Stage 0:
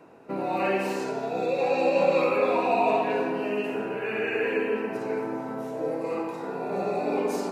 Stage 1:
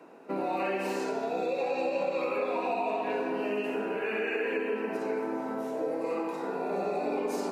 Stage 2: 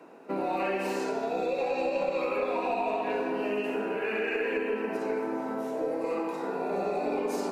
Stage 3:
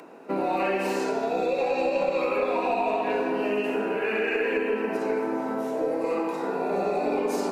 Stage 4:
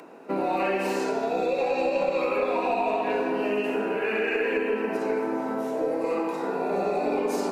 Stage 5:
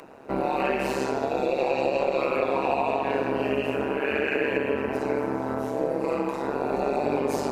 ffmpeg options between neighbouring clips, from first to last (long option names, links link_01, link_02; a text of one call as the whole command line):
ffmpeg -i in.wav -af "highpass=frequency=190:width=0.5412,highpass=frequency=190:width=1.3066,acompressor=threshold=-27dB:ratio=6" out.wav
ffmpeg -i in.wav -af "aeval=exprs='0.112*(cos(1*acos(clip(val(0)/0.112,-1,1)))-cos(1*PI/2))+0.00631*(cos(2*acos(clip(val(0)/0.112,-1,1)))-cos(2*PI/2))+0.000708*(cos(8*acos(clip(val(0)/0.112,-1,1)))-cos(8*PI/2))':channel_layout=same,volume=1dB" out.wav
ffmpeg -i in.wav -af "acompressor=mode=upward:threshold=-51dB:ratio=2.5,volume=4dB" out.wav
ffmpeg -i in.wav -af anull out.wav
ffmpeg -i in.wav -af "tremolo=f=140:d=0.889,volume=4dB" out.wav